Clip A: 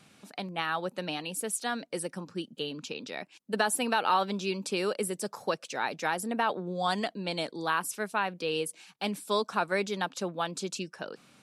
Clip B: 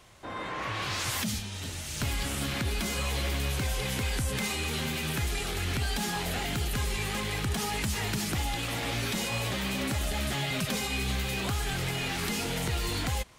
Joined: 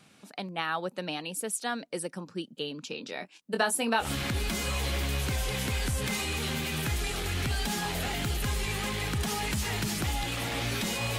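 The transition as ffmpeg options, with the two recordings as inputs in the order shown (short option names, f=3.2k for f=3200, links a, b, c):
-filter_complex "[0:a]asettb=1/sr,asplit=3[a][b][c];[a]atrim=end=2.884[d];[b]atrim=start=2.88:end=4.1,asetpts=PTS-STARTPTS,afade=t=in:d=0.004:c=qsin,afade=t=out:st=1.216:d=0.004:c=qsin,asplit=2[e][f];[f]adelay=22,volume=-7dB[g];[e][g]amix=inputs=2:normalize=0,atrim=end_sample=53802[h];[c]atrim=start=4.096[i];[d][h]acrossfade=d=0.004:c1=hsin:c2=qsin[j];[j][i]acrossfade=d=0.004:c1=qsin:c2=hsin,apad=whole_dur=11.18,atrim=end=11.18,atrim=end=4.1,asetpts=PTS-STARTPTS[k];[1:a]atrim=start=2.29:end=9.49,asetpts=PTS-STARTPTS[l];[k][l]acrossfade=d=0.12:c1=tri:c2=tri"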